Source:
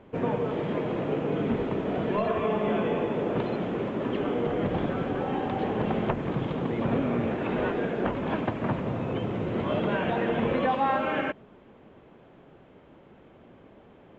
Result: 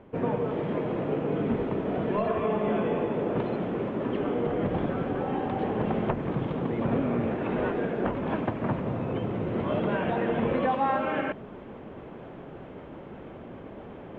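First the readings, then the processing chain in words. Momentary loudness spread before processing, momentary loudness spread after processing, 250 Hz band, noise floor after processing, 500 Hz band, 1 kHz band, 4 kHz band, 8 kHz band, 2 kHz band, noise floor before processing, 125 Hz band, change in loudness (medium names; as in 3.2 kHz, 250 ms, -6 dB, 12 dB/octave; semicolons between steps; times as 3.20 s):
4 LU, 16 LU, 0.0 dB, -44 dBFS, 0.0 dB, -0.5 dB, -4.5 dB, no reading, -2.0 dB, -54 dBFS, 0.0 dB, -0.5 dB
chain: treble shelf 3.7 kHz -11 dB; reverse; upward compressor, threshold -31 dBFS; reverse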